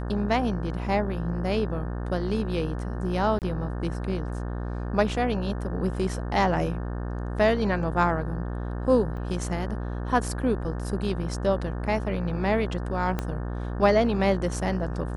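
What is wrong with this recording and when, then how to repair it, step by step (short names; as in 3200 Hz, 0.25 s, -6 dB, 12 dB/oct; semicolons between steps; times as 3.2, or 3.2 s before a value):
buzz 60 Hz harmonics 30 -31 dBFS
3.39–3.42 gap 28 ms
9.17 gap 3.3 ms
13.19 pop -14 dBFS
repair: de-click; de-hum 60 Hz, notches 30; interpolate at 3.39, 28 ms; interpolate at 9.17, 3.3 ms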